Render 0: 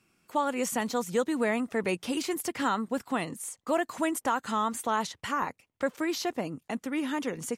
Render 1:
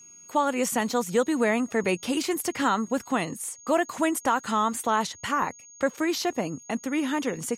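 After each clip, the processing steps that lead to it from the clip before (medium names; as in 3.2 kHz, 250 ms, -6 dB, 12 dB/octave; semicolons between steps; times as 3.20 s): whistle 6.6 kHz -51 dBFS; trim +4 dB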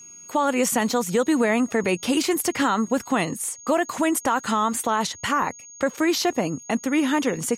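peak limiter -17.5 dBFS, peak gain reduction 5.5 dB; trim +5.5 dB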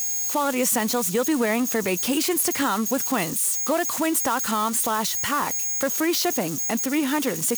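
zero-crossing glitches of -19 dBFS; trim -2 dB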